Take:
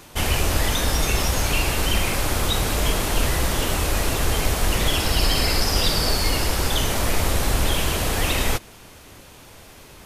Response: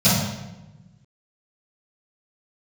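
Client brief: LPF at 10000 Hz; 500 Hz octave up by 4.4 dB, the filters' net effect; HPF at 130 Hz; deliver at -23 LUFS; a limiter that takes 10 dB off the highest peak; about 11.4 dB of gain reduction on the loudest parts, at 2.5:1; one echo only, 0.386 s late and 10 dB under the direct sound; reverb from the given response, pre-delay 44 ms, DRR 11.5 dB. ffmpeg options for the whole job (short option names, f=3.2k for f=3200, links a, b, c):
-filter_complex "[0:a]highpass=130,lowpass=10k,equalizer=f=500:t=o:g=5.5,acompressor=threshold=-37dB:ratio=2.5,alimiter=level_in=7.5dB:limit=-24dB:level=0:latency=1,volume=-7.5dB,aecho=1:1:386:0.316,asplit=2[a][b];[1:a]atrim=start_sample=2205,adelay=44[c];[b][c]afir=irnorm=-1:irlink=0,volume=-31.5dB[d];[a][d]amix=inputs=2:normalize=0,volume=15.5dB"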